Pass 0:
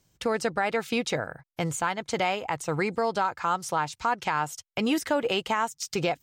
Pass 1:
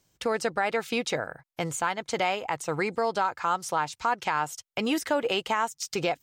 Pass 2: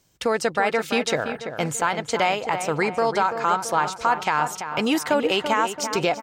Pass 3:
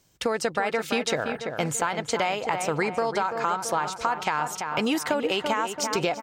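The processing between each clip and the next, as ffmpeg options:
-af "bass=f=250:g=-5,treble=f=4k:g=0"
-filter_complex "[0:a]asplit=2[a][b];[b]adelay=336,lowpass=f=2.5k:p=1,volume=-8.5dB,asplit=2[c][d];[d]adelay=336,lowpass=f=2.5k:p=1,volume=0.54,asplit=2[e][f];[f]adelay=336,lowpass=f=2.5k:p=1,volume=0.54,asplit=2[g][h];[h]adelay=336,lowpass=f=2.5k:p=1,volume=0.54,asplit=2[i][j];[j]adelay=336,lowpass=f=2.5k:p=1,volume=0.54,asplit=2[k][l];[l]adelay=336,lowpass=f=2.5k:p=1,volume=0.54[m];[a][c][e][g][i][k][m]amix=inputs=7:normalize=0,volume=5dB"
-af "acompressor=threshold=-21dB:ratio=6"

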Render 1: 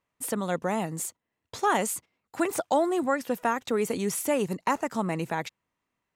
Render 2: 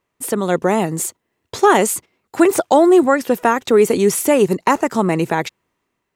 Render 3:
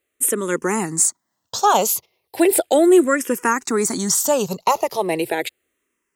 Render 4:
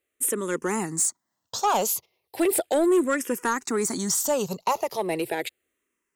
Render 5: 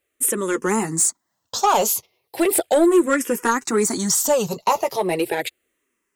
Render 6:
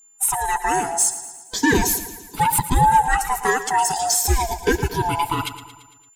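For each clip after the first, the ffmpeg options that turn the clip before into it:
-af "equalizer=f=380:t=o:w=0.44:g=7.5,dynaudnorm=f=100:g=9:m=3.5dB,volume=7dB"
-filter_complex "[0:a]bass=f=250:g=-6,treble=f=4k:g=9,asplit=2[a][b];[b]afreqshift=-0.36[c];[a][c]amix=inputs=2:normalize=1"
-af "asoftclip=type=tanh:threshold=-10dB,volume=-5dB"
-af "flanger=delay=1.1:depth=9.3:regen=-30:speed=0.74:shape=triangular,volume=9dB"
-filter_complex "[0:a]afftfilt=real='real(if(lt(b,1008),b+24*(1-2*mod(floor(b/24),2)),b),0)':imag='imag(if(lt(b,1008),b+24*(1-2*mod(floor(b/24),2)),b),0)':win_size=2048:overlap=0.75,aeval=exprs='val(0)+0.00355*sin(2*PI*7200*n/s)':c=same,asplit=2[a][b];[b]aecho=0:1:113|226|339|452|565|678:0.224|0.123|0.0677|0.0372|0.0205|0.0113[c];[a][c]amix=inputs=2:normalize=0"

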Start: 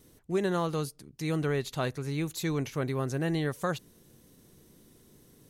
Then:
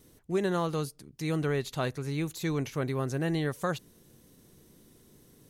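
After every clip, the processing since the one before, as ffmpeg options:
-af "deesser=0.75"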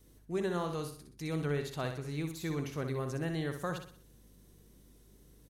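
-af "aeval=exprs='val(0)+0.00141*(sin(2*PI*50*n/s)+sin(2*PI*2*50*n/s)/2+sin(2*PI*3*50*n/s)/3+sin(2*PI*4*50*n/s)/4+sin(2*PI*5*50*n/s)/5)':c=same,aecho=1:1:62|124|186|248|310:0.447|0.183|0.0751|0.0308|0.0126,volume=-6dB"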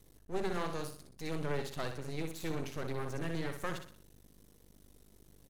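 -af "aeval=exprs='max(val(0),0)':c=same,volume=3dB"

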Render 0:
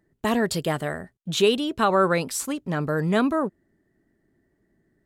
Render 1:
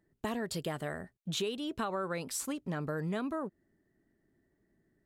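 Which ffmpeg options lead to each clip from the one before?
-af "acompressor=threshold=-26dB:ratio=6,volume=-6dB"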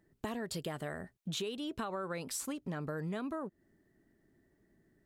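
-af "acompressor=threshold=-44dB:ratio=2,volume=3.5dB"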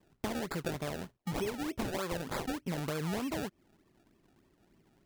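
-af "acrusher=samples=29:mix=1:aa=0.000001:lfo=1:lforange=29:lforate=3.3,volume=3dB"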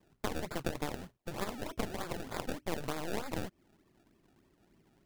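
-af "aeval=exprs='0.0891*(cos(1*acos(clip(val(0)/0.0891,-1,1)))-cos(1*PI/2))+0.0224*(cos(4*acos(clip(val(0)/0.0891,-1,1)))-cos(4*PI/2))+0.0282*(cos(7*acos(clip(val(0)/0.0891,-1,1)))-cos(7*PI/2))':c=same,volume=-2dB"

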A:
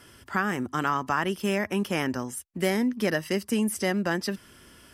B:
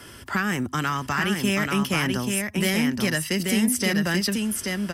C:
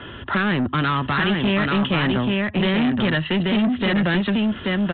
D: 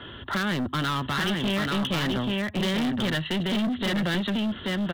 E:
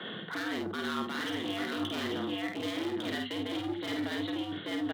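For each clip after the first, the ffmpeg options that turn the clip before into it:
-filter_complex "[0:a]acrossover=split=190|1800[a][b][c];[b]acompressor=threshold=-38dB:ratio=4[d];[a][d][c]amix=inputs=3:normalize=0,asoftclip=type=tanh:threshold=-20.5dB,aecho=1:1:834:0.631,volume=8.5dB"
-af "equalizer=f=2.2k:w=7.4:g=-9,aresample=8000,asoftclip=type=tanh:threshold=-25dB,aresample=44100,volume=9dB"
-af "aeval=exprs='clip(val(0),-1,0.106)':c=same,bandreject=f=2.5k:w=20,aexciter=amount=1.9:drive=7.7:freq=3.5k,volume=-5.5dB"
-af "areverse,acompressor=threshold=-34dB:ratio=10,areverse,afreqshift=97,aecho=1:1:50|75:0.668|0.178"

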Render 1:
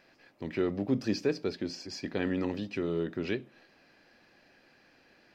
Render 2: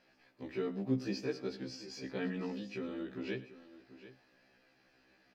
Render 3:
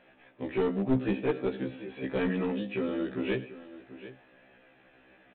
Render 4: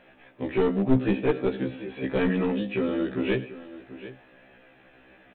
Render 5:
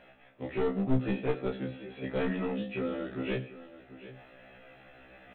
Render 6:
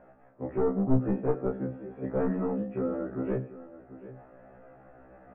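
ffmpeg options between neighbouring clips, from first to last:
-af "aecho=1:1:104|737:0.133|0.168,afftfilt=real='re*1.73*eq(mod(b,3),0)':imag='im*1.73*eq(mod(b,3),0)':win_size=2048:overlap=0.75,volume=-4dB"
-af "equalizer=f=580:t=o:w=0.77:g=3.5,aresample=8000,aeval=exprs='clip(val(0),-1,0.02)':c=same,aresample=44100,volume=8.5dB"
-af "lowshelf=f=67:g=6.5,volume=4.5dB"
-af "areverse,acompressor=mode=upward:threshold=-40dB:ratio=2.5,areverse,aecho=1:1:14|31:0.531|0.447,volume=-7.5dB"
-af "lowpass=f=1.3k:w=0.5412,lowpass=f=1.3k:w=1.3066,volume=3dB"

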